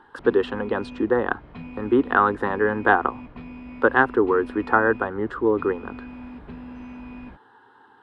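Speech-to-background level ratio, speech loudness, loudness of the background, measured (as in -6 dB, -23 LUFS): 18.0 dB, -22.0 LUFS, -40.0 LUFS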